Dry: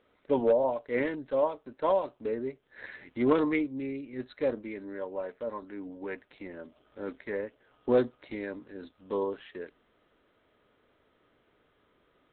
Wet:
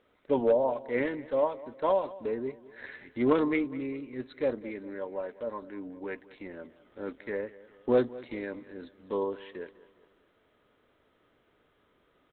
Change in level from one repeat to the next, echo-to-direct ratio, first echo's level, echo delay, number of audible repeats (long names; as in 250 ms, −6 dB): −6.5 dB, −18.0 dB, −19.0 dB, 204 ms, 3